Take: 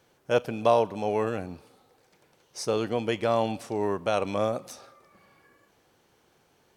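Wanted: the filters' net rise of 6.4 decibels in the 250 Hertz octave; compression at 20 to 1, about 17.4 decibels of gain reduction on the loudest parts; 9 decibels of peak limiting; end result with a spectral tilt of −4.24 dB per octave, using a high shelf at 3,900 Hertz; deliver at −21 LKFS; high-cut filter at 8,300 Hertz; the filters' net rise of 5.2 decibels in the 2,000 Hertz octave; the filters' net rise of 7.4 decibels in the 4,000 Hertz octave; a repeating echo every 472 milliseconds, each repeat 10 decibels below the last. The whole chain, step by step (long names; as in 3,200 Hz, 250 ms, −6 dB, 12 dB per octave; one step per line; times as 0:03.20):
low-pass filter 8,300 Hz
parametric band 250 Hz +8 dB
parametric band 2,000 Hz +3.5 dB
high-shelf EQ 3,900 Hz +7 dB
parametric band 4,000 Hz +4.5 dB
downward compressor 20 to 1, threshold −31 dBFS
brickwall limiter −26.5 dBFS
repeating echo 472 ms, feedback 32%, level −10 dB
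level +18 dB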